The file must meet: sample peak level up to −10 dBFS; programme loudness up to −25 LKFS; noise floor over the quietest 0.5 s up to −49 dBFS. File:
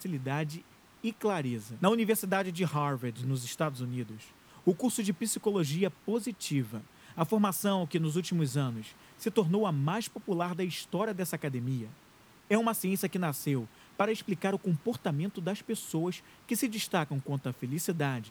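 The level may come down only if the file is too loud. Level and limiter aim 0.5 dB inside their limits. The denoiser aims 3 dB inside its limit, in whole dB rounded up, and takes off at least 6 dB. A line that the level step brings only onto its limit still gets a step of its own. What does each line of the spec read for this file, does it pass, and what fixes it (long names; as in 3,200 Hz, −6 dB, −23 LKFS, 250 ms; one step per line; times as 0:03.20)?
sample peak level −10.5 dBFS: in spec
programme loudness −32.0 LKFS: in spec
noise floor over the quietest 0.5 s −59 dBFS: in spec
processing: no processing needed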